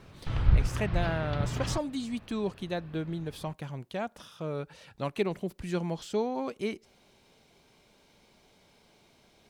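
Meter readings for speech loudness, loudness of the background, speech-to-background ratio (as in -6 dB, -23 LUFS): -35.0 LUFS, -31.5 LUFS, -3.5 dB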